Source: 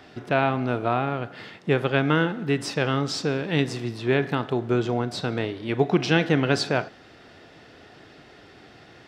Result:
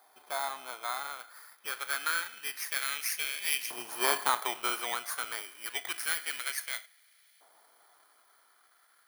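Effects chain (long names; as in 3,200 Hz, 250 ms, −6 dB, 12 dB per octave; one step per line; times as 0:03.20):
samples in bit-reversed order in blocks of 16 samples
source passing by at 0:04.06, 7 m/s, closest 6.6 metres
auto-filter high-pass saw up 0.27 Hz 870–2,400 Hz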